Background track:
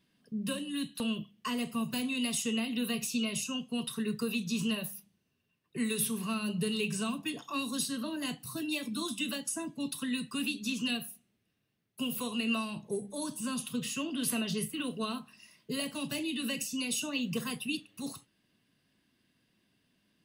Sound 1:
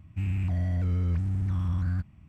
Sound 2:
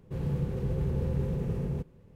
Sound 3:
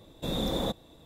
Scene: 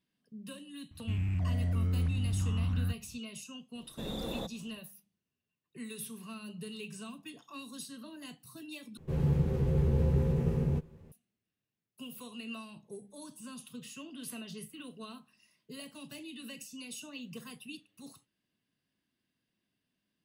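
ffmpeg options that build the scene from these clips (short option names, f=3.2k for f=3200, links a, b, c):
-filter_complex "[0:a]volume=-11dB[a];[2:a]asplit=2[b][c];[c]adelay=13,volume=-4dB[d];[b][d]amix=inputs=2:normalize=0[e];[a]asplit=2[f][g];[f]atrim=end=8.974[h];[e]atrim=end=2.15[i];[g]atrim=start=11.116[j];[1:a]atrim=end=2.28,asetpts=PTS-STARTPTS,volume=-3.5dB,afade=t=in:d=0.004:c=hsin,afade=t=out:st=2.276:d=0.004:c=hsin,adelay=910[k];[3:a]atrim=end=1.05,asetpts=PTS-STARTPTS,volume=-8.5dB,afade=t=in:d=0.004:c=hsin,afade=t=out:st=1.046:d=0.004:c=hsin,adelay=3750[l];[h][i]acrossfade=d=0.004:c1=hsin:c2=hsin[m];[m][j]acrossfade=d=0.004:c1=hsin:c2=hsin[n];[n][k][l]amix=inputs=3:normalize=0"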